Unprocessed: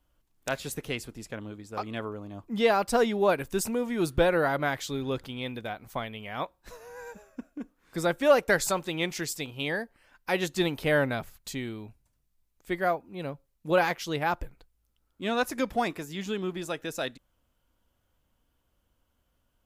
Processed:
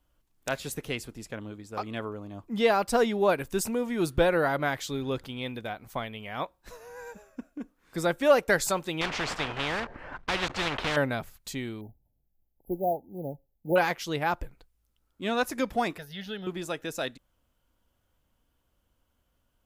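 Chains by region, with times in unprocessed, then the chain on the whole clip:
9.01–10.97 block floating point 3-bit + LPF 1300 Hz + spectral compressor 4:1
11.81–13.76 high shelf 10000 Hz -5.5 dB + short-mantissa float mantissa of 2-bit + brick-wall FIR band-stop 910–11000 Hz
15.98–16.47 bell 2400 Hz +10.5 dB 0.29 oct + fixed phaser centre 1600 Hz, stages 8
whole clip: dry

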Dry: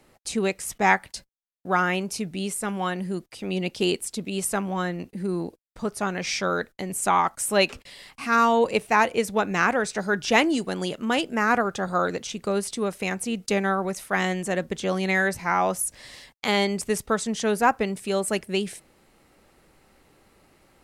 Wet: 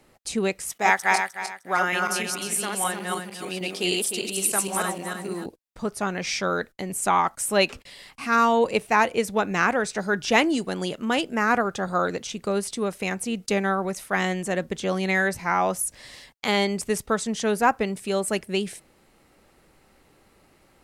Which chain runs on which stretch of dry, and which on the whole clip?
0.7–5.46 regenerating reverse delay 0.153 s, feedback 51%, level -1 dB + HPF 540 Hz 6 dB/oct + high shelf 7500 Hz +7.5 dB
whole clip: dry

